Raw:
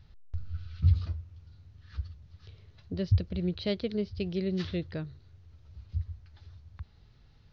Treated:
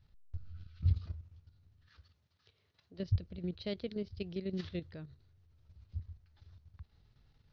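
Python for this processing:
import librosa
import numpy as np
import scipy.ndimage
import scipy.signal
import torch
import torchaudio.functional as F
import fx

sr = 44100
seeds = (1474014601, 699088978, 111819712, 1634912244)

y = fx.highpass(x, sr, hz=540.0, slope=6, at=(1.87, 2.98), fade=0.02)
y = fx.level_steps(y, sr, step_db=10)
y = F.gain(torch.from_numpy(y), -5.0).numpy()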